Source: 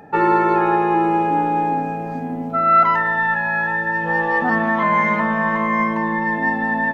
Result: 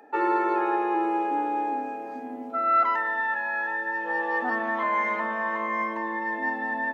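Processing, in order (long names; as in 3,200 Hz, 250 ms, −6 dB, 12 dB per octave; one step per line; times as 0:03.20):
Butterworth high-pass 250 Hz 48 dB per octave
level −8 dB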